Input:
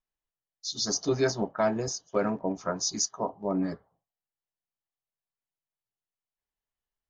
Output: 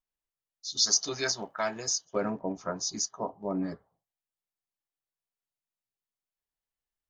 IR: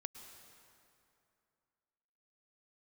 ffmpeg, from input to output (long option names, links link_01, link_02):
-filter_complex "[0:a]asettb=1/sr,asplit=3[link_01][link_02][link_03];[link_01]atrim=end=0.774[link_04];[link_02]atrim=start=0.77:end=2.05,asetpts=PTS-STARTPTS,afade=type=in:duration=0.004:curve=qsin,afade=type=out:start_time=1.276:duration=0.004:curve=qsin,tiltshelf=frequency=970:gain=-9.5[link_05];[link_03]atrim=start=2.046[link_06];[link_04][link_05]acrossfade=duration=0.004:curve1=hsin:curve2=qsin[link_07];[link_07][link_06]acrossfade=duration=0.004:curve1=qsin:curve2=hsin,volume=-3dB"